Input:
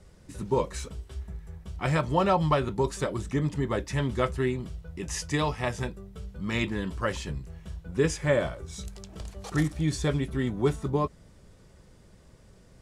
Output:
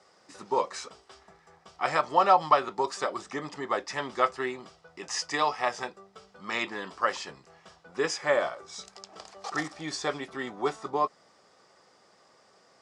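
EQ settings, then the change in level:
loudspeaker in its box 420–8,100 Hz, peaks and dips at 770 Hz +9 dB, 1,200 Hz +9 dB, 1,900 Hz +3 dB, 5,000 Hz +8 dB
−1.0 dB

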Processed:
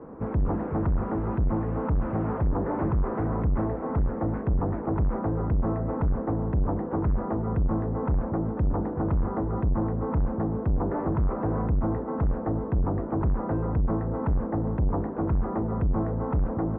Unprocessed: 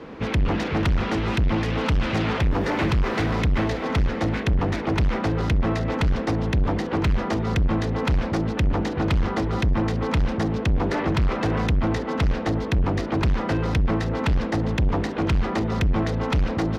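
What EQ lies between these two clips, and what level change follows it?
low-pass filter 1,200 Hz 24 dB per octave
−3.5 dB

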